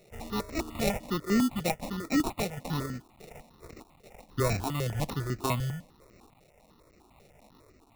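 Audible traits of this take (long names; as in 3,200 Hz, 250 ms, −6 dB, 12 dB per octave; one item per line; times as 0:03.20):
a quantiser's noise floor 10 bits, dither triangular
sample-and-hold tremolo
aliases and images of a low sample rate 1,600 Hz, jitter 0%
notches that jump at a steady rate 10 Hz 270–3,300 Hz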